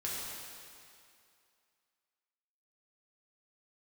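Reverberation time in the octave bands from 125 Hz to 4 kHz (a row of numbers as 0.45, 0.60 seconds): 2.0, 2.3, 2.4, 2.5, 2.4, 2.2 seconds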